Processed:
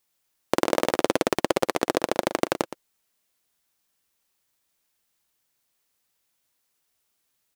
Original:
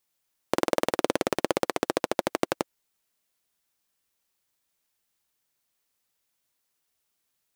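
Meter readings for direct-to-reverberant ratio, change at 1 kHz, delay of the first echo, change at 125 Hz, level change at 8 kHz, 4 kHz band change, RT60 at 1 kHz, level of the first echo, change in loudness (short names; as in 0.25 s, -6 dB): none, +3.5 dB, 0.118 s, +3.5 dB, +3.0 dB, +3.5 dB, none, -12.5 dB, +3.0 dB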